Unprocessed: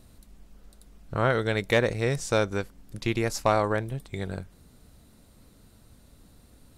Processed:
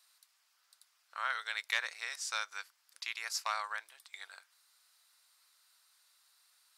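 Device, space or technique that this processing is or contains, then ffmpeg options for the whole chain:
headphones lying on a table: -af "highpass=f=1.1k:w=0.5412,highpass=f=1.1k:w=1.3066,equalizer=f=4.9k:t=o:w=0.52:g=6,volume=-5.5dB"

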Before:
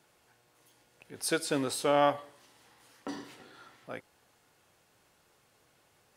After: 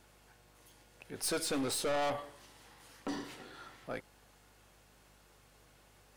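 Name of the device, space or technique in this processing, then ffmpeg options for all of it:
valve amplifier with mains hum: -af "aeval=exprs='(tanh(44.7*val(0)+0.2)-tanh(0.2))/44.7':c=same,aeval=exprs='val(0)+0.000316*(sin(2*PI*50*n/s)+sin(2*PI*2*50*n/s)/2+sin(2*PI*3*50*n/s)/3+sin(2*PI*4*50*n/s)/4+sin(2*PI*5*50*n/s)/5)':c=same,volume=3dB"

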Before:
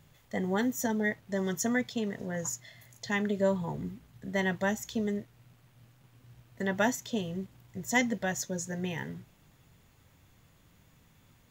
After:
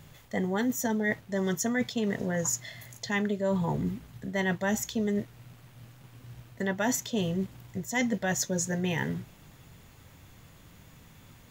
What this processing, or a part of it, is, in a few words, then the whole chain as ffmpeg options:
compression on the reversed sound: -af "areverse,acompressor=threshold=-34dB:ratio=6,areverse,volume=8.5dB"

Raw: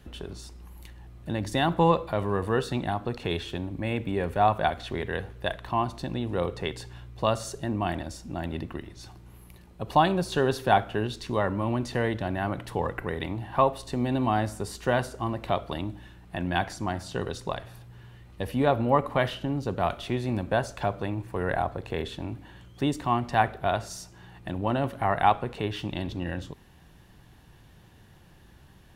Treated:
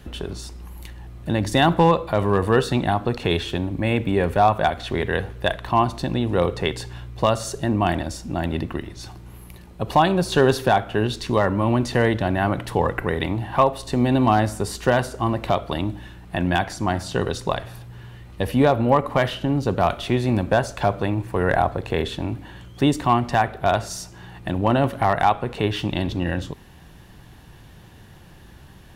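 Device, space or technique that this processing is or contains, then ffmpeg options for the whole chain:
limiter into clipper: -af "alimiter=limit=-12.5dB:level=0:latency=1:release=356,asoftclip=type=hard:threshold=-14.5dB,volume=8dB"

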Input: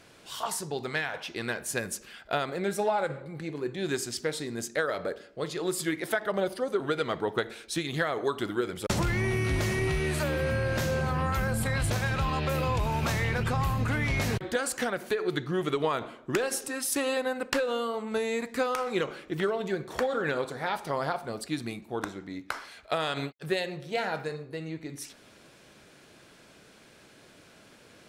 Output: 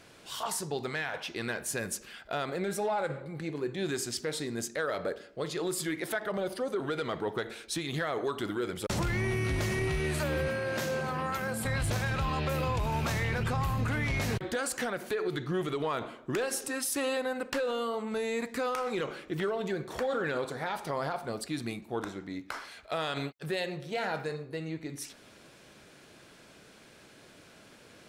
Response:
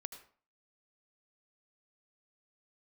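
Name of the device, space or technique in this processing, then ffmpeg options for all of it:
soft clipper into limiter: -filter_complex "[0:a]asoftclip=type=tanh:threshold=-16.5dB,alimiter=limit=-23.5dB:level=0:latency=1:release=35,asettb=1/sr,asplit=3[a][b][c];[a]atrim=end=10.484[d];[b]atrim=start=10.48:end=11.65,asetpts=PTS-STARTPTS,afade=t=in:d=0.004:c=qsin,afade=t=out:st=1.166:d=0.004:c=qsin,highpass=190[e];[c]atrim=start=11.646[f];[d][e]acrossfade=d=0.004:c1=hsin:c2=qsin[g];[g][f]acrossfade=d=0.004:c1=qsin:c2=hsin"

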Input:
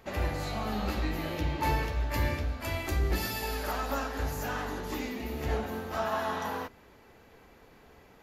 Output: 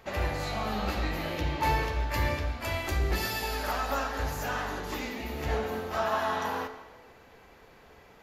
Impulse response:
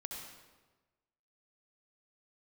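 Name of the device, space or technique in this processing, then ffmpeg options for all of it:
filtered reverb send: -filter_complex "[0:a]asplit=2[a][b];[b]highpass=f=250:w=0.5412,highpass=f=250:w=1.3066,lowpass=8.2k[c];[1:a]atrim=start_sample=2205[d];[c][d]afir=irnorm=-1:irlink=0,volume=-3.5dB[e];[a][e]amix=inputs=2:normalize=0"

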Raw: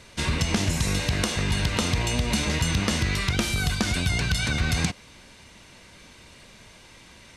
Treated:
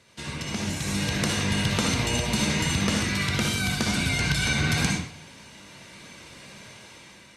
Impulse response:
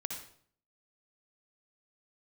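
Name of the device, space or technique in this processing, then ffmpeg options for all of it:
far-field microphone of a smart speaker: -filter_complex "[1:a]atrim=start_sample=2205[a];[0:a][a]afir=irnorm=-1:irlink=0,highpass=98,dynaudnorm=f=350:g=5:m=11.5dB,volume=-7.5dB" -ar 48000 -c:a libopus -b:a 48k

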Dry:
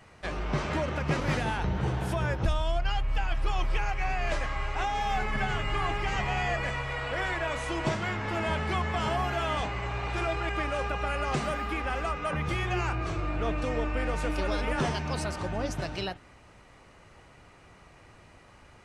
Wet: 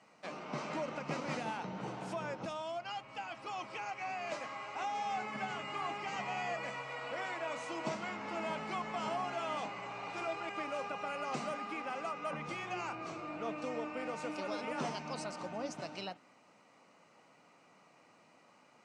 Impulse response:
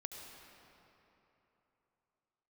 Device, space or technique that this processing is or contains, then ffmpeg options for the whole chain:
television speaker: -af "highpass=f=190:w=0.5412,highpass=f=190:w=1.3066,equalizer=f=380:t=q:w=4:g=-7,equalizer=f=1.7k:t=q:w=4:g=-8,equalizer=f=3.4k:t=q:w=4:g=-6,lowpass=f=8.3k:w=0.5412,lowpass=f=8.3k:w=1.3066,volume=-6dB"

